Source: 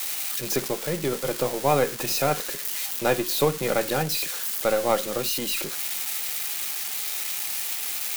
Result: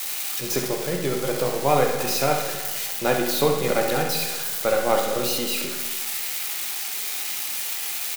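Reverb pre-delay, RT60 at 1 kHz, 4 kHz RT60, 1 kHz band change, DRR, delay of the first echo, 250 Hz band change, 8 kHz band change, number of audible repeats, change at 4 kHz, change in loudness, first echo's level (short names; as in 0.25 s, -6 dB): 16 ms, 1.5 s, 1.4 s, +3.0 dB, 1.5 dB, 66 ms, +2.0 dB, +1.0 dB, 1, +2.0 dB, +1.5 dB, -7.5 dB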